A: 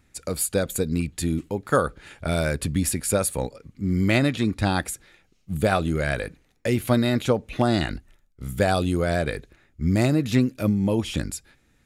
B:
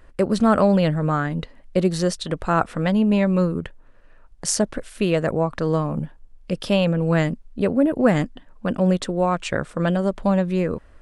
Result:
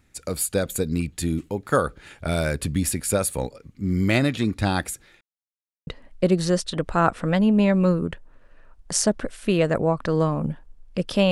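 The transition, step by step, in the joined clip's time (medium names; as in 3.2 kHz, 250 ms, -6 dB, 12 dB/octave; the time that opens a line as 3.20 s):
A
5.21–5.87 s: mute
5.87 s: go over to B from 1.40 s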